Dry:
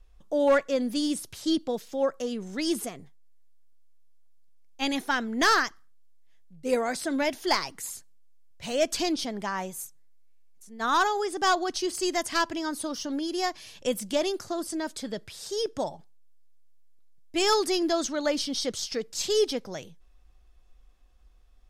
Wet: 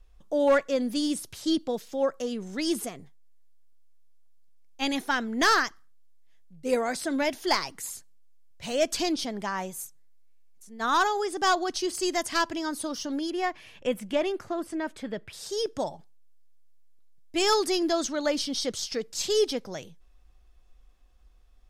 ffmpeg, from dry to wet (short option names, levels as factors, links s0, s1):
-filter_complex "[0:a]asettb=1/sr,asplit=3[s0][s1][s2];[s0]atrim=end=13.304[s3];[s1]atrim=start=13.3:end=15.33,asetpts=PTS-STARTPTS,afade=t=in:d=0.004:c=qsin,afade=t=out:st=2.026:d=0.004:c=qsin,highshelf=f=3400:t=q:w=1.5:g=-10[s4];[s2]atrim=start=15.326[s5];[s3][s4]acrossfade=d=0.004:c1=hsin:c2=qsin[s6];[s6][s5]acrossfade=d=0.004:c1=qsin:c2=hsin"